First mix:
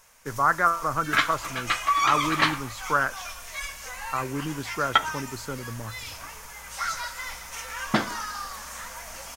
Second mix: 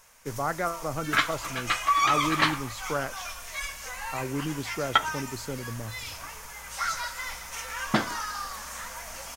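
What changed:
speech: add flat-topped bell 1,300 Hz −11 dB 1.1 octaves
second sound: send −10.0 dB

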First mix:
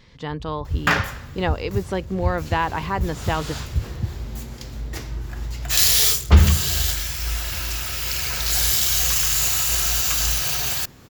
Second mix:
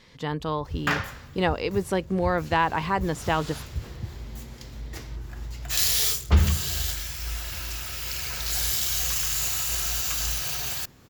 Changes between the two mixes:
speech: remove low-pass filter 7,100 Hz 12 dB per octave
first sound −9.0 dB
second sound −6.5 dB

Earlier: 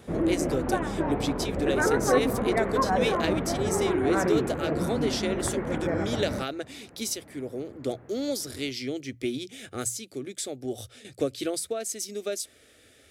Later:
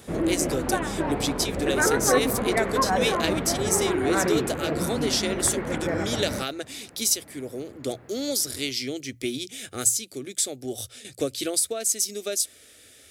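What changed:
background: remove high-frequency loss of the air 210 metres
master: add high-shelf EQ 3,500 Hz +11.5 dB

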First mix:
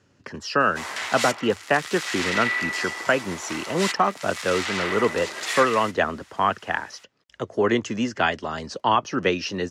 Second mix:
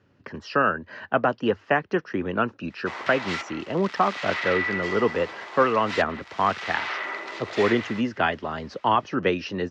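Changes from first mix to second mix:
background: entry +2.10 s
master: add high-frequency loss of the air 210 metres

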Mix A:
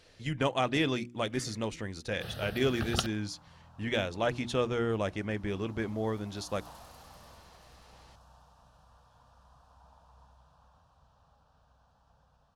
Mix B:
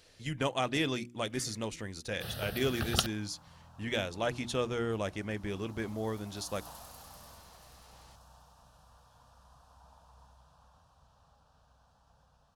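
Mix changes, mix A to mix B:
speech −3.0 dB
master: remove low-pass filter 3,900 Hz 6 dB per octave

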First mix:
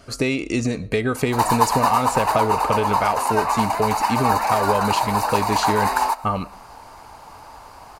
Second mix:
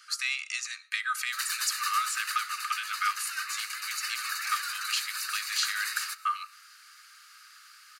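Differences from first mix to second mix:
background: remove high-pass with resonance 960 Hz, resonance Q 4.6
master: add Chebyshev high-pass with heavy ripple 1,200 Hz, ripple 3 dB

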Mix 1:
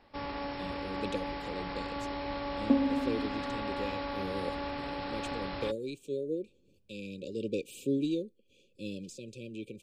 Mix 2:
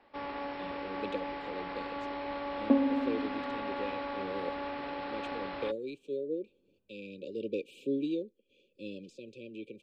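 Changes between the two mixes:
second sound +3.0 dB
master: add three-way crossover with the lows and the highs turned down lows −12 dB, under 230 Hz, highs −19 dB, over 3,800 Hz

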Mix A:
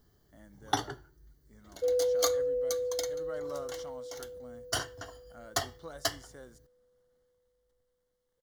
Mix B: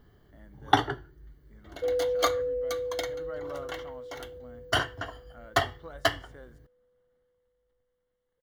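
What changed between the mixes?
first sound +8.0 dB
master: add high shelf with overshoot 3,900 Hz −11.5 dB, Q 1.5

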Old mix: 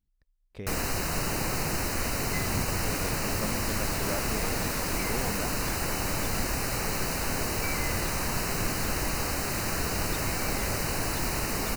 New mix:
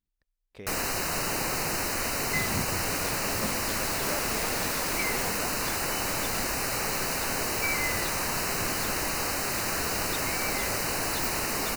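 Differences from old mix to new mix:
first sound: send +11.0 dB
second sound +7.5 dB
master: add low-shelf EQ 220 Hz −10.5 dB

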